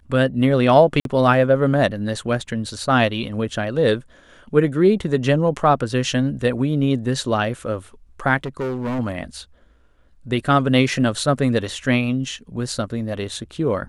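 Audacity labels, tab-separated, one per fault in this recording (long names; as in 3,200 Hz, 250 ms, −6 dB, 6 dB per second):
1.000000	1.050000	drop-out 52 ms
8.370000	9.000000	clipping −21.5 dBFS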